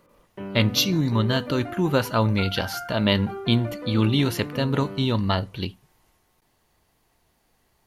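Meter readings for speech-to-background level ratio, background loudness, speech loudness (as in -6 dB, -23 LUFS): 12.5 dB, -36.0 LUFS, -23.5 LUFS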